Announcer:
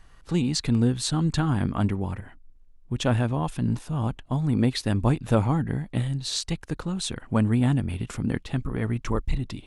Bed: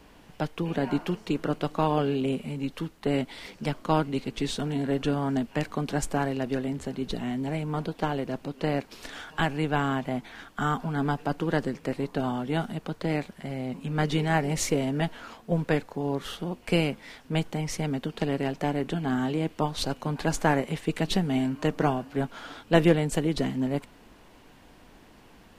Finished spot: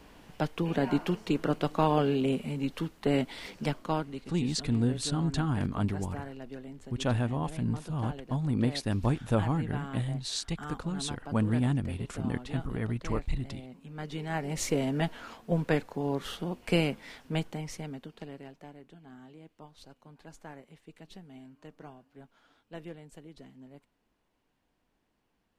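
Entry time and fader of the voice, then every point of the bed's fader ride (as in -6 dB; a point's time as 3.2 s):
4.00 s, -5.5 dB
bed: 3.64 s -0.5 dB
4.33 s -14 dB
13.98 s -14 dB
14.8 s -2 dB
17.21 s -2 dB
18.87 s -23.5 dB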